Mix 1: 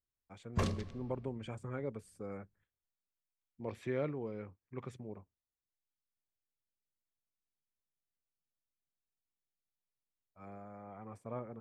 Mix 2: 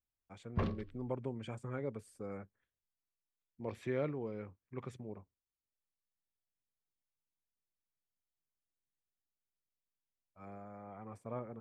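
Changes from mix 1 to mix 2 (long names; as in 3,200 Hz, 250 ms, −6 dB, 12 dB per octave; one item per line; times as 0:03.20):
background: add high-frequency loss of the air 340 metres
reverb: off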